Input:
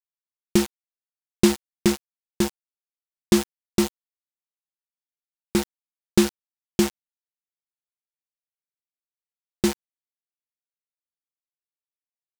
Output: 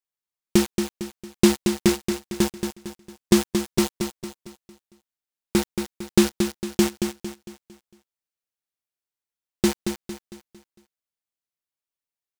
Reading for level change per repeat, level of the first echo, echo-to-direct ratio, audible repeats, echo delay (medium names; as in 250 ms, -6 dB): -7.5 dB, -7.0 dB, -6.0 dB, 4, 227 ms